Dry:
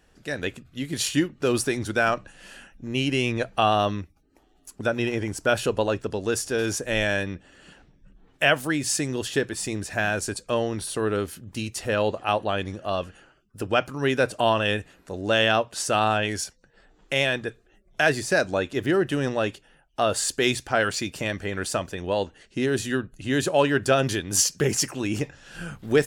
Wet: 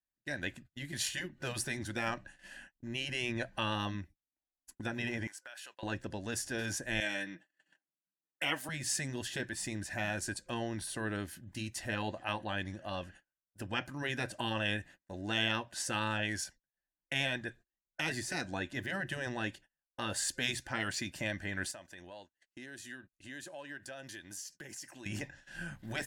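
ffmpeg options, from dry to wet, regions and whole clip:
ffmpeg -i in.wav -filter_complex "[0:a]asettb=1/sr,asplit=3[link_01][link_02][link_03];[link_01]atrim=end=5.274[link_04];[link_02]atrim=start=5.27:end=5.83,asetpts=PTS-STARTPTS,afade=type=in:duration=0.004:curve=qsin,afade=type=out:start_time=0.556:duration=0.004:curve=qsin,agate=range=-10dB:threshold=-39dB:ratio=16:release=100:detection=peak,highpass=1200,acompressor=threshold=-35dB:ratio=16:attack=3.2:release=140:knee=1:detection=peak[link_05];[link_03]atrim=start=5.826[link_06];[link_04][link_05]acrossfade=duration=0.004:curve1=hsin:curve2=qsin[link_07];[link_07][link_06]acrossfade=duration=0.004:curve1=qsin:curve2=hsin,asettb=1/sr,asplit=3[link_08][link_09][link_10];[link_08]atrim=end=7.004[link_11];[link_09]atrim=start=7:end=8.69,asetpts=PTS-STARTPTS,afade=type=in:duration=0.004:curve=qsin,afade=type=out:start_time=1.686:duration=0.004:curve=qsin,highpass=280,aecho=1:1:6.3:0.59,atrim=end_sample=74529,adynamicequalizer=threshold=0.0178:dfrequency=680:dqfactor=0.91:tfrequency=680:tqfactor=0.91:attack=5:release=100:ratio=0.375:range=2.5:mode=cutabove:tftype=bell[link_12];[link_10]atrim=start=8.686[link_13];[link_11][link_12]acrossfade=duration=0.004:curve1=hsin:curve2=qsin[link_14];[link_14][link_13]acrossfade=duration=0.004:curve1=qsin:curve2=hsin,asettb=1/sr,asplit=3[link_15][link_16][link_17];[link_15]atrim=end=21.714[link_18];[link_16]atrim=start=21.71:end=25.06,asetpts=PTS-STARTPTS,afade=type=in:duration=0.004:curve=qsin,afade=type=out:start_time=3.346:duration=0.004:curve=qsin,bass=frequency=250:gain=-8,treble=frequency=4000:gain=4,acompressor=threshold=-40dB:ratio=3:attack=3.2:release=140:knee=1:detection=peak[link_19];[link_17]atrim=start=25.056[link_20];[link_18][link_19]acrossfade=duration=0.004:curve1=hsin:curve2=qsin[link_21];[link_21][link_20]acrossfade=duration=0.004:curve1=qsin:curve2=hsin,superequalizer=7b=0.316:10b=0.562:11b=2,agate=range=-33dB:threshold=-44dB:ratio=16:detection=peak,afftfilt=real='re*lt(hypot(re,im),0.355)':imag='im*lt(hypot(re,im),0.355)':win_size=1024:overlap=0.75,volume=-8.5dB" out.wav

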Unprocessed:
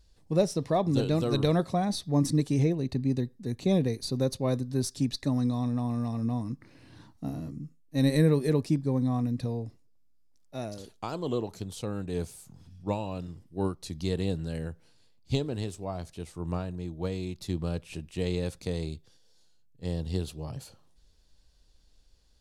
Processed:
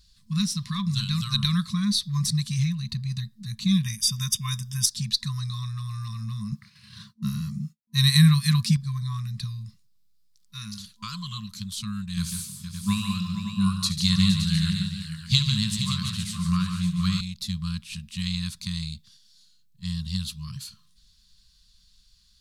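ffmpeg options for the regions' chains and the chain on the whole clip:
ffmpeg -i in.wav -filter_complex "[0:a]asettb=1/sr,asplit=3[link_01][link_02][link_03];[link_01]atrim=end=3.834[link_04];[link_02]atrim=start=3.83:end=4.86,asetpts=PTS-STARTPTS,afade=type=in:duration=0.004:curve=qsin,afade=type=out:start_time=1.026:duration=0.004:curve=qsin,asuperstop=centerf=4200:order=20:qfactor=4.4,highshelf=frequency=2500:gain=9.5[link_05];[link_03]atrim=start=4.856[link_06];[link_04][link_05]acrossfade=duration=0.004:curve1=hsin:curve2=qsin[link_07];[link_07][link_06]acrossfade=duration=0.004:curve1=qsin:curve2=hsin,asettb=1/sr,asplit=3[link_08][link_09][link_10];[link_08]atrim=end=6.524[link_11];[link_09]atrim=start=6.52:end=8.77,asetpts=PTS-STARTPTS,afade=type=in:duration=0.004:curve=qsin,afade=type=out:start_time=2.246:duration=0.004:curve=qsin,highpass=76,agate=range=-33dB:threshold=-51dB:ratio=3:release=100:detection=peak,acontrast=53[link_12];[link_10]atrim=start=8.766[link_13];[link_11][link_12]acrossfade=duration=0.004:curve1=hsin:curve2=qsin[link_14];[link_14][link_13]acrossfade=duration=0.004:curve1=qsin:curve2=hsin,asettb=1/sr,asplit=3[link_15][link_16][link_17];[link_15]atrim=end=12.174[link_18];[link_16]atrim=start=12.17:end=17.21,asetpts=PTS-STARTPTS,afade=type=in:duration=0.004:curve=qsin,afade=type=out:start_time=5.036:duration=0.004:curve=qsin,highpass=91,acontrast=54,aecho=1:1:72|146|190|467|568|707:0.237|0.422|0.224|0.316|0.335|0.2,atrim=end_sample=222264[link_19];[link_17]atrim=start=17.206[link_20];[link_18][link_19]acrossfade=duration=0.004:curve1=hsin:curve2=qsin[link_21];[link_21][link_20]acrossfade=duration=0.004:curve1=qsin:curve2=hsin,equalizer=frequency=250:width_type=o:width=1:gain=7,equalizer=frequency=500:width_type=o:width=1:gain=6,equalizer=frequency=4000:width_type=o:width=1:gain=10,afftfilt=real='re*(1-between(b*sr/4096,220,1000))':imag='im*(1-between(b*sr/4096,220,1000))':win_size=4096:overlap=0.75,highshelf=frequency=6600:gain=9.5" out.wav

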